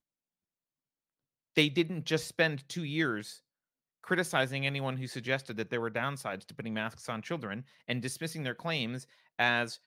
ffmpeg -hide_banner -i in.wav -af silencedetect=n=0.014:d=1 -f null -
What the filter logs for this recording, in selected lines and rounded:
silence_start: 0.00
silence_end: 1.57 | silence_duration: 1.57